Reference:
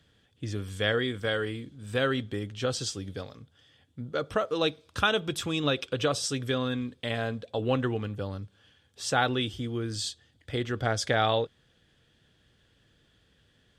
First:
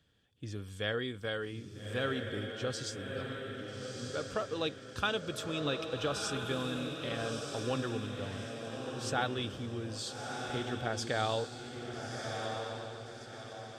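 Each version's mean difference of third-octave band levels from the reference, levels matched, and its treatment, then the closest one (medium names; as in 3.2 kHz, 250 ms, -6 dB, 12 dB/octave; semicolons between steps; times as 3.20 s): 8.0 dB: band-stop 2 kHz, Q 18; on a send: echo that smears into a reverb 1280 ms, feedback 44%, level -4 dB; on the sum: trim -7.5 dB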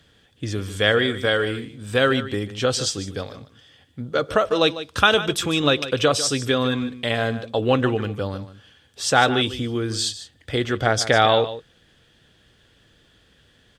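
2.5 dB: peaking EQ 120 Hz -3.5 dB 2.3 oct; delay 149 ms -13.5 dB; trim +9 dB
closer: second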